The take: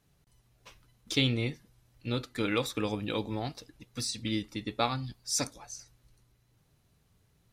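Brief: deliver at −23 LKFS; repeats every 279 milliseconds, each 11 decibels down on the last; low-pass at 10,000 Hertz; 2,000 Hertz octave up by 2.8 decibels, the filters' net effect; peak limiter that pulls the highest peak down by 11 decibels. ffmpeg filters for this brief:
ffmpeg -i in.wav -af "lowpass=10000,equalizer=frequency=2000:width_type=o:gain=3.5,alimiter=limit=-22dB:level=0:latency=1,aecho=1:1:279|558|837:0.282|0.0789|0.0221,volume=12.5dB" out.wav

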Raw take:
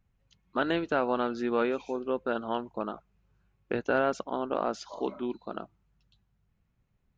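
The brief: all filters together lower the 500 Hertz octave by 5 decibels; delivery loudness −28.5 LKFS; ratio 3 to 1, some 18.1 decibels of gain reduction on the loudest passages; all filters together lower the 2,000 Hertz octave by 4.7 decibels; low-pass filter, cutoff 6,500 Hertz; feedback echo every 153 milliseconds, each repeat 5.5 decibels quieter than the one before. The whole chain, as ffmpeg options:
ffmpeg -i in.wav -af "lowpass=6500,equalizer=frequency=500:width_type=o:gain=-6,equalizer=frequency=2000:width_type=o:gain=-7,acompressor=threshold=-52dB:ratio=3,aecho=1:1:153|306|459|612|765|918|1071:0.531|0.281|0.149|0.079|0.0419|0.0222|0.0118,volume=22dB" out.wav

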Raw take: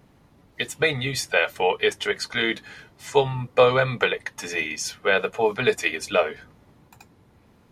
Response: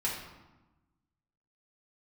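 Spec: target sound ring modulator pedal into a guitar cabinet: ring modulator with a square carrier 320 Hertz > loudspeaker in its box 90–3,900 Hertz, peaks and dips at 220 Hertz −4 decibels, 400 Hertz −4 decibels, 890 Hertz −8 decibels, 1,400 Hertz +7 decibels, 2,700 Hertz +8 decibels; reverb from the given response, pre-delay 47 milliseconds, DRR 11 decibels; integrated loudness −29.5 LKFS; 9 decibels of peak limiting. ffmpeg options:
-filter_complex "[0:a]alimiter=limit=-13dB:level=0:latency=1,asplit=2[link_01][link_02];[1:a]atrim=start_sample=2205,adelay=47[link_03];[link_02][link_03]afir=irnorm=-1:irlink=0,volume=-17dB[link_04];[link_01][link_04]amix=inputs=2:normalize=0,aeval=exprs='val(0)*sgn(sin(2*PI*320*n/s))':channel_layout=same,highpass=90,equalizer=frequency=220:width_type=q:width=4:gain=-4,equalizer=frequency=400:width_type=q:width=4:gain=-4,equalizer=frequency=890:width_type=q:width=4:gain=-8,equalizer=frequency=1400:width_type=q:width=4:gain=7,equalizer=frequency=2700:width_type=q:width=4:gain=8,lowpass=frequency=3900:width=0.5412,lowpass=frequency=3900:width=1.3066,volume=-5dB"

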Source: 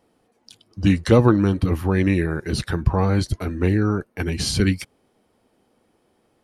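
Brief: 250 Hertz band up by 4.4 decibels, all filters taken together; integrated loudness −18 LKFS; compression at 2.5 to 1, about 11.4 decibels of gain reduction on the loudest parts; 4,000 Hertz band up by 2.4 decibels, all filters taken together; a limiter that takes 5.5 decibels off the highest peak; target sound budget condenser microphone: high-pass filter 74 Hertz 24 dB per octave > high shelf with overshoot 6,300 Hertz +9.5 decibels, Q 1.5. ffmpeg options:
ffmpeg -i in.wav -af "equalizer=frequency=250:width_type=o:gain=6,equalizer=frequency=4000:width_type=o:gain=5,acompressor=threshold=-24dB:ratio=2.5,alimiter=limit=-15.5dB:level=0:latency=1,highpass=frequency=74:width=0.5412,highpass=frequency=74:width=1.3066,highshelf=frequency=6300:width_type=q:width=1.5:gain=9.5,volume=8.5dB" out.wav

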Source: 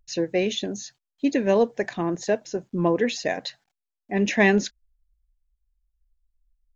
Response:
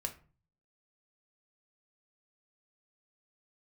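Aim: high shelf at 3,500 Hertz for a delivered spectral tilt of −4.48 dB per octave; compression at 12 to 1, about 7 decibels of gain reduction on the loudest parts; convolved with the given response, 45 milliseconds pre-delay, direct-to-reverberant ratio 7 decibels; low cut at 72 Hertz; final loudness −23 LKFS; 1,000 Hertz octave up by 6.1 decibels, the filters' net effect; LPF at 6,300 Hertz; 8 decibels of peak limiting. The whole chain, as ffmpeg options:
-filter_complex "[0:a]highpass=72,lowpass=6300,equalizer=frequency=1000:width_type=o:gain=8.5,highshelf=frequency=3500:gain=-7,acompressor=threshold=-19dB:ratio=12,alimiter=limit=-18dB:level=0:latency=1,asplit=2[link_01][link_02];[1:a]atrim=start_sample=2205,adelay=45[link_03];[link_02][link_03]afir=irnorm=-1:irlink=0,volume=-7.5dB[link_04];[link_01][link_04]amix=inputs=2:normalize=0,volume=6dB"

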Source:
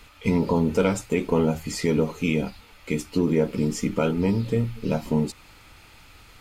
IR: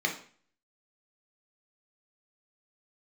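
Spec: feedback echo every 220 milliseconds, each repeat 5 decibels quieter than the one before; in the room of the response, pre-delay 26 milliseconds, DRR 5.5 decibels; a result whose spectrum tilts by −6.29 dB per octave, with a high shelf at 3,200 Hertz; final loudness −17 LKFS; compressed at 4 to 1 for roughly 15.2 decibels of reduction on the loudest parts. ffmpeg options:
-filter_complex "[0:a]highshelf=frequency=3200:gain=-4,acompressor=threshold=-36dB:ratio=4,aecho=1:1:220|440|660|880|1100|1320|1540:0.562|0.315|0.176|0.0988|0.0553|0.031|0.0173,asplit=2[link_01][link_02];[1:a]atrim=start_sample=2205,adelay=26[link_03];[link_02][link_03]afir=irnorm=-1:irlink=0,volume=-14.5dB[link_04];[link_01][link_04]amix=inputs=2:normalize=0,volume=19dB"

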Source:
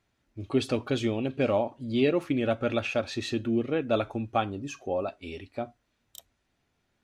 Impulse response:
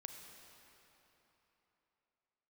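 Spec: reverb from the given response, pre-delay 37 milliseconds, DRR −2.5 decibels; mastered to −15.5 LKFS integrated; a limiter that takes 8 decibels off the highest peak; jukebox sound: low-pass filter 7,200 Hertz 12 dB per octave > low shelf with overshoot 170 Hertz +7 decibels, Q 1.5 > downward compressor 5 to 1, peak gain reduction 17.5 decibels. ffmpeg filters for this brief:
-filter_complex "[0:a]alimiter=limit=-20dB:level=0:latency=1,asplit=2[link_01][link_02];[1:a]atrim=start_sample=2205,adelay=37[link_03];[link_02][link_03]afir=irnorm=-1:irlink=0,volume=7dB[link_04];[link_01][link_04]amix=inputs=2:normalize=0,lowpass=7200,lowshelf=frequency=170:width_type=q:width=1.5:gain=7,acompressor=threshold=-38dB:ratio=5,volume=25dB"

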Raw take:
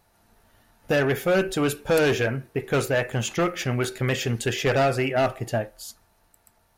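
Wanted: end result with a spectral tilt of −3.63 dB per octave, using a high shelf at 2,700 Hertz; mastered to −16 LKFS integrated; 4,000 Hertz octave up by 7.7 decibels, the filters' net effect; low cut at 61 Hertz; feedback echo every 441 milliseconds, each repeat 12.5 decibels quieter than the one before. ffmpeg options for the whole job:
ffmpeg -i in.wav -af "highpass=61,highshelf=frequency=2700:gain=7,equalizer=frequency=4000:width_type=o:gain=4.5,aecho=1:1:441|882|1323:0.237|0.0569|0.0137,volume=6.5dB" out.wav

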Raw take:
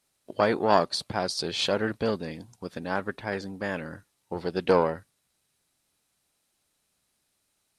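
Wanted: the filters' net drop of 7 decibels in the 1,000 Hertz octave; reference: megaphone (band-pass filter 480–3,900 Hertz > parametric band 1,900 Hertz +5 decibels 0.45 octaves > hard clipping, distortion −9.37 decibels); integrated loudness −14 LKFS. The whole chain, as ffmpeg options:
ffmpeg -i in.wav -af "highpass=480,lowpass=3900,equalizer=frequency=1000:width_type=o:gain=-9,equalizer=frequency=1900:width_type=o:width=0.45:gain=5,asoftclip=type=hard:threshold=-25.5dB,volume=20.5dB" out.wav

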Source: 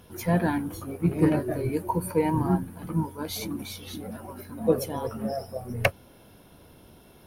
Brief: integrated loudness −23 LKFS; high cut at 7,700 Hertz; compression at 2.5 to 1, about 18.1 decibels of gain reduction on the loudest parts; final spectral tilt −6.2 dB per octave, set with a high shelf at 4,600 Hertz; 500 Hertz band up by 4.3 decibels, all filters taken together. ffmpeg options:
ffmpeg -i in.wav -af "lowpass=7700,equalizer=frequency=500:width_type=o:gain=5,highshelf=frequency=4600:gain=-7,acompressor=threshold=-42dB:ratio=2.5,volume=17.5dB" out.wav

